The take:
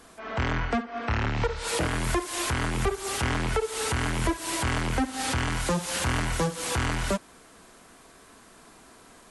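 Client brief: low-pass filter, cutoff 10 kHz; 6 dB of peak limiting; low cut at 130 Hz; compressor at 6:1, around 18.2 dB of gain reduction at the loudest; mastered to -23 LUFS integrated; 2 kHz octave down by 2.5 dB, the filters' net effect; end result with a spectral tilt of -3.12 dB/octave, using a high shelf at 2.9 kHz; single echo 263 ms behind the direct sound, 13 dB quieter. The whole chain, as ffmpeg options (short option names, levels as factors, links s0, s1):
-af "highpass=130,lowpass=10000,equalizer=f=2000:t=o:g=-4.5,highshelf=f=2900:g=3.5,acompressor=threshold=0.00708:ratio=6,alimiter=level_in=3.76:limit=0.0631:level=0:latency=1,volume=0.266,aecho=1:1:263:0.224,volume=14.1"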